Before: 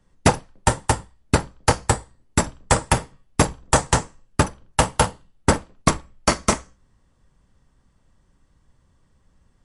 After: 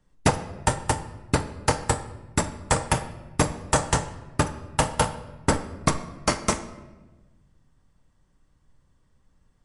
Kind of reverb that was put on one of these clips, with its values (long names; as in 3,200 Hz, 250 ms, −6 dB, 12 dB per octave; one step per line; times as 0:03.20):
rectangular room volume 800 cubic metres, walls mixed, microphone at 0.45 metres
level −4.5 dB